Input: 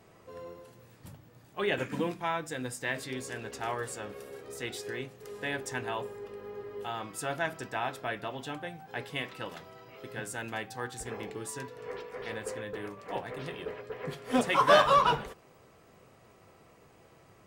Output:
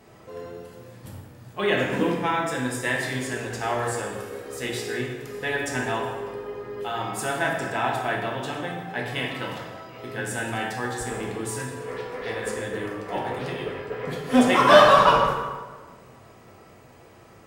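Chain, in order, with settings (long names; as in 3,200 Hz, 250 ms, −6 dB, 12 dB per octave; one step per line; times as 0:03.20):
dense smooth reverb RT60 1.4 s, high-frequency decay 0.65×, DRR −1.5 dB
level +4.5 dB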